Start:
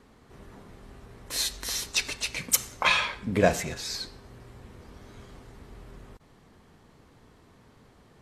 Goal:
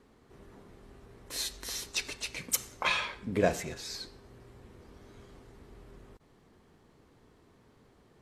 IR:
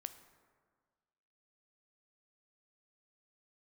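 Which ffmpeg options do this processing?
-af "equalizer=frequency=370:width_type=o:width=0.85:gain=4.5,volume=-6.5dB"

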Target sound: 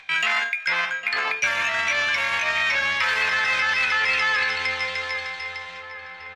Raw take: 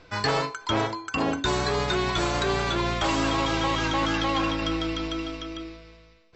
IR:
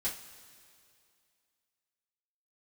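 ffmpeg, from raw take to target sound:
-filter_complex "[0:a]acrossover=split=510 3200:gain=0.141 1 0.126[link_01][link_02][link_03];[link_01][link_02][link_03]amix=inputs=3:normalize=0,agate=range=-27dB:threshold=-50dB:ratio=16:detection=peak,asetrate=70004,aresample=44100,atempo=0.629961,asplit=2[link_04][link_05];[link_05]adelay=805,lowpass=frequency=2100:poles=1,volume=-12dB,asplit=2[link_06][link_07];[link_07]adelay=805,lowpass=frequency=2100:poles=1,volume=0.46,asplit=2[link_08][link_09];[link_09]adelay=805,lowpass=frequency=2100:poles=1,volume=0.46,asplit=2[link_10][link_11];[link_11]adelay=805,lowpass=frequency=2100:poles=1,volume=0.46,asplit=2[link_12][link_13];[link_13]adelay=805,lowpass=frequency=2100:poles=1,volume=0.46[link_14];[link_04][link_06][link_08][link_10][link_12][link_14]amix=inputs=6:normalize=0,alimiter=limit=-20.5dB:level=0:latency=1:release=81,asplit=2[link_15][link_16];[1:a]atrim=start_sample=2205[link_17];[link_16][link_17]afir=irnorm=-1:irlink=0,volume=-22dB[link_18];[link_15][link_18]amix=inputs=2:normalize=0,acompressor=mode=upward:threshold=-37dB:ratio=2.5,equalizer=frequency=2300:width_type=o:width=1.1:gain=11,volume=1.5dB"

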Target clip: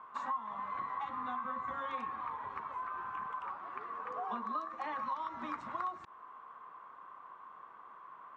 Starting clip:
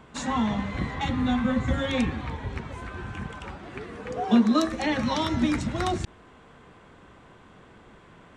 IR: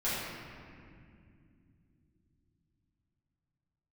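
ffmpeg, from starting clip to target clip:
-af "bandpass=frequency=1100:width_type=q:width=8.9:csg=0,acompressor=threshold=-47dB:ratio=5,volume=11dB"

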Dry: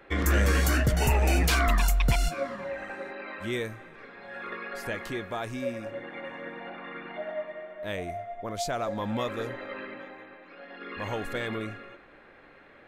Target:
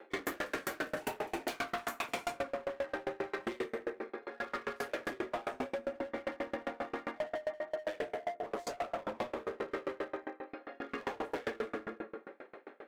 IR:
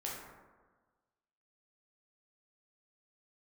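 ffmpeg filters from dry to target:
-filter_complex "[0:a]asplit=2[link_01][link_02];[link_02]adynamicsmooth=sensitivity=4:basefreq=930,volume=1dB[link_03];[link_01][link_03]amix=inputs=2:normalize=0,highpass=frequency=270:width=0.5412,highpass=frequency=270:width=1.3066[link_04];[1:a]atrim=start_sample=2205[link_05];[link_04][link_05]afir=irnorm=-1:irlink=0,acompressor=threshold=-29dB:ratio=10,asoftclip=type=hard:threshold=-32.5dB,aeval=exprs='val(0)*pow(10,-31*if(lt(mod(7.5*n/s,1),2*abs(7.5)/1000),1-mod(7.5*n/s,1)/(2*abs(7.5)/1000),(mod(7.5*n/s,1)-2*abs(7.5)/1000)/(1-2*abs(7.5)/1000))/20)':channel_layout=same,volume=5dB"

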